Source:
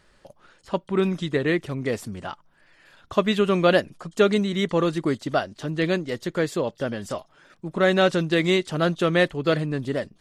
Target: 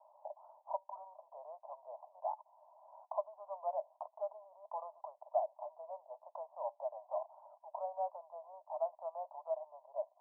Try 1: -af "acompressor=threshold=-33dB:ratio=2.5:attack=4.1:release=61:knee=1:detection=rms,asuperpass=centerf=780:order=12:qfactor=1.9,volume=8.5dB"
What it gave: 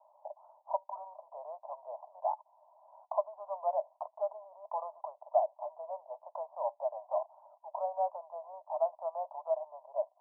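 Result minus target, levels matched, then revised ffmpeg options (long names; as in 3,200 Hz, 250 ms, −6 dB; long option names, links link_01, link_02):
downward compressor: peak gain reduction −6 dB
-af "acompressor=threshold=-43dB:ratio=2.5:attack=4.1:release=61:knee=1:detection=rms,asuperpass=centerf=780:order=12:qfactor=1.9,volume=8.5dB"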